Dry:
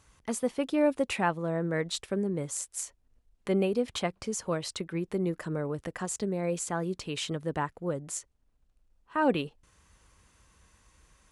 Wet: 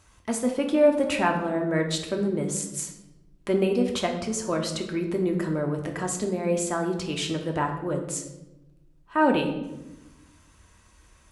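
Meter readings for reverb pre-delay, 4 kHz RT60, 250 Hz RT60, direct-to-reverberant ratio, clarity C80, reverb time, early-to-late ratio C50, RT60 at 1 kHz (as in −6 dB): 3 ms, 0.70 s, 1.5 s, 2.0 dB, 9.5 dB, 1.0 s, 7.5 dB, 0.85 s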